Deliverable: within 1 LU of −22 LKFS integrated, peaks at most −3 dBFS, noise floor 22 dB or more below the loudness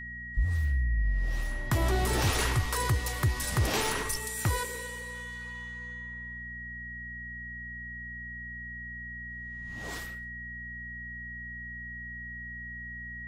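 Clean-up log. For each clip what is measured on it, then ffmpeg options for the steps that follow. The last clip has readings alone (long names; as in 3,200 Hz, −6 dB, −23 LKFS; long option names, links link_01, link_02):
mains hum 60 Hz; hum harmonics up to 240 Hz; level of the hum −43 dBFS; interfering tone 1,900 Hz; level of the tone −39 dBFS; integrated loudness −33.0 LKFS; sample peak −17.5 dBFS; target loudness −22.0 LKFS
→ -af "bandreject=frequency=60:width_type=h:width=4,bandreject=frequency=120:width_type=h:width=4,bandreject=frequency=180:width_type=h:width=4,bandreject=frequency=240:width_type=h:width=4"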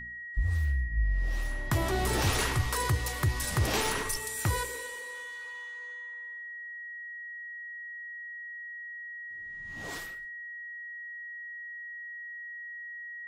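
mains hum none found; interfering tone 1,900 Hz; level of the tone −39 dBFS
→ -af "bandreject=frequency=1900:width=30"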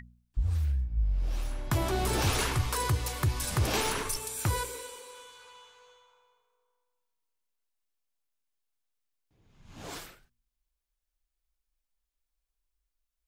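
interfering tone none found; integrated loudness −30.5 LKFS; sample peak −17.5 dBFS; target loudness −22.0 LKFS
→ -af "volume=8.5dB"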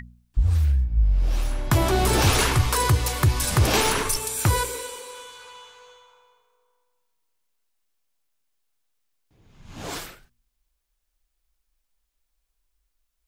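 integrated loudness −22.0 LKFS; sample peak −9.0 dBFS; background noise floor −76 dBFS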